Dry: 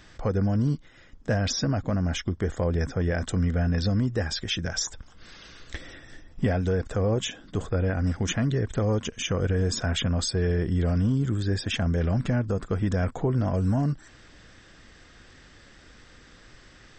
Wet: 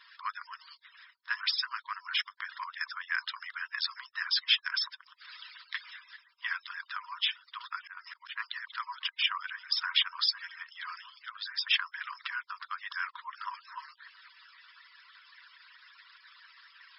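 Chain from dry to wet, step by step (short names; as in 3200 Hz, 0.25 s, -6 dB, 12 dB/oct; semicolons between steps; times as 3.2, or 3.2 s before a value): median-filter separation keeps percussive; brick-wall FIR band-pass 930–5400 Hz; 7.77–8.4 auto swell 0.206 s; gain +4.5 dB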